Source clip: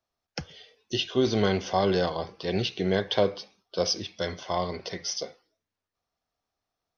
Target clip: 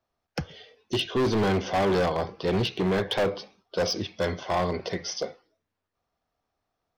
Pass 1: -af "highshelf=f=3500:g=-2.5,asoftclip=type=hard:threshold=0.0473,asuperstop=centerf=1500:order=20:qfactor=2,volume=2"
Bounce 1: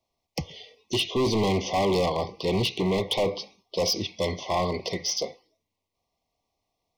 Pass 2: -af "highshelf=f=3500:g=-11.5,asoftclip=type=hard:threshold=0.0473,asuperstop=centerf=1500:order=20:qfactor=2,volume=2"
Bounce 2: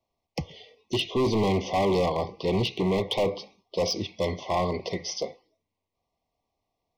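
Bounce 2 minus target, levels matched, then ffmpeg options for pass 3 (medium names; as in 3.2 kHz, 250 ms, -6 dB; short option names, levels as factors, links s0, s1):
2 kHz band -4.0 dB
-af "highshelf=f=3500:g=-11.5,asoftclip=type=hard:threshold=0.0473,volume=2"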